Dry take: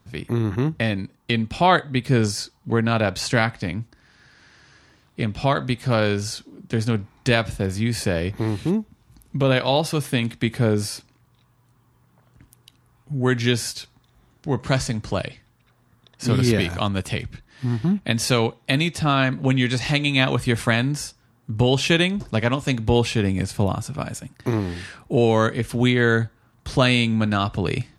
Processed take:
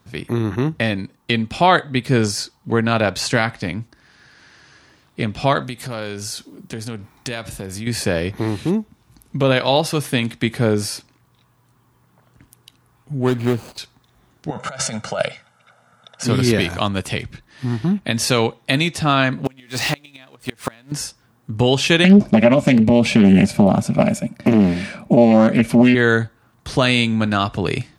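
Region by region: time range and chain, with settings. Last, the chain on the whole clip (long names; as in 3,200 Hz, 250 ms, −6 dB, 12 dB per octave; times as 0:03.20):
0:05.62–0:07.87: high-shelf EQ 8,600 Hz +11 dB + downward compressor 3 to 1, threshold −29 dBFS
0:13.19–0:13.78: running median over 25 samples + parametric band 5,600 Hz −8 dB 0.23 octaves
0:14.50–0:16.24: comb filter 1.4 ms, depth 73% + compressor whose output falls as the input rises −23 dBFS, ratio −0.5 + loudspeaker in its box 210–9,900 Hz, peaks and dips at 280 Hz −9 dB, 580 Hz +4 dB, 1,300 Hz +7 dB, 4,500 Hz −5 dB
0:19.45–0:20.92: converter with a step at zero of −26.5 dBFS + low-shelf EQ 130 Hz −11 dB + gate with flip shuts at −9 dBFS, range −30 dB
0:22.04–0:25.95: downward compressor 5 to 1, threshold −19 dBFS + hollow resonant body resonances 210/590/2,300 Hz, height 18 dB, ringing for 50 ms + highs frequency-modulated by the lows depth 0.45 ms
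whole clip: low-shelf EQ 120 Hz −7 dB; boost into a limiter +5 dB; level −1 dB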